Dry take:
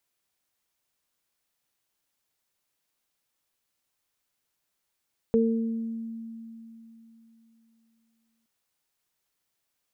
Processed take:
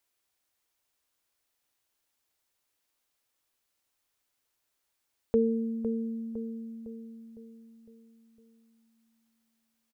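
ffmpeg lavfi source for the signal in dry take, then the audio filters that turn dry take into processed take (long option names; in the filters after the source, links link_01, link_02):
-f lavfi -i "aevalsrc='0.0944*pow(10,-3*t/3.45)*sin(2*PI*227*t)+0.119*pow(10,-3*t/0.88)*sin(2*PI*454*t)':duration=3.12:sample_rate=44100"
-filter_complex "[0:a]equalizer=frequency=170:width_type=o:width=0.45:gain=-11.5,asplit=2[link_01][link_02];[link_02]adelay=507,lowpass=frequency=1000:poles=1,volume=-9dB,asplit=2[link_03][link_04];[link_04]adelay=507,lowpass=frequency=1000:poles=1,volume=0.54,asplit=2[link_05][link_06];[link_06]adelay=507,lowpass=frequency=1000:poles=1,volume=0.54,asplit=2[link_07][link_08];[link_08]adelay=507,lowpass=frequency=1000:poles=1,volume=0.54,asplit=2[link_09][link_10];[link_10]adelay=507,lowpass=frequency=1000:poles=1,volume=0.54,asplit=2[link_11][link_12];[link_12]adelay=507,lowpass=frequency=1000:poles=1,volume=0.54[link_13];[link_01][link_03][link_05][link_07][link_09][link_11][link_13]amix=inputs=7:normalize=0"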